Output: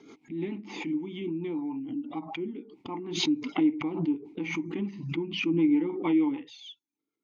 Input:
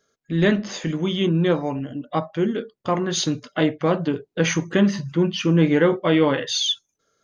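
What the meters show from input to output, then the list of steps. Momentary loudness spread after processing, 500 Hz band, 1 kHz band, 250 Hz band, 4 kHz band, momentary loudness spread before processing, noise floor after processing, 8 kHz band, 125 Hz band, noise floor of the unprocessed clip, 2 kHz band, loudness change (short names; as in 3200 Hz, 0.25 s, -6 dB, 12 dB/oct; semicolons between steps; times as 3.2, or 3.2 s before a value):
13 LU, -14.0 dB, -12.5 dB, -6.0 dB, -11.5 dB, 9 LU, under -85 dBFS, n/a, -15.5 dB, -75 dBFS, -11.0 dB, -8.5 dB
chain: vowel filter u; rotary speaker horn 6.7 Hz; backwards sustainer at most 65 dB/s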